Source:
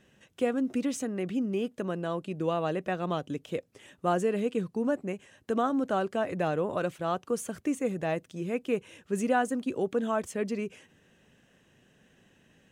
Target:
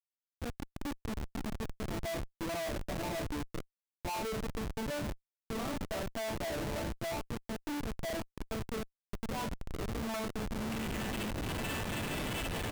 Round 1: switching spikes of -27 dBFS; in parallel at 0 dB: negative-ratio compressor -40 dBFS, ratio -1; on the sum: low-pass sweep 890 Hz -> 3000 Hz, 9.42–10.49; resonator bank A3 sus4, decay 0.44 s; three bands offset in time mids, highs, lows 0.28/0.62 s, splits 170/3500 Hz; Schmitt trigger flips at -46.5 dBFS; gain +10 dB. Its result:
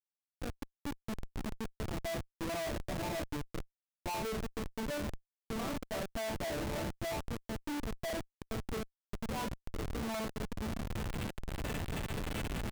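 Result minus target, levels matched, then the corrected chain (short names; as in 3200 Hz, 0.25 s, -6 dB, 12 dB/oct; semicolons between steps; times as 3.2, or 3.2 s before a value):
switching spikes: distortion -8 dB
switching spikes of -18.5 dBFS; in parallel at 0 dB: negative-ratio compressor -40 dBFS, ratio -1; on the sum: low-pass sweep 890 Hz -> 3000 Hz, 9.42–10.49; resonator bank A3 sus4, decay 0.44 s; three bands offset in time mids, highs, lows 0.28/0.62 s, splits 170/3500 Hz; Schmitt trigger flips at -46.5 dBFS; gain +10 dB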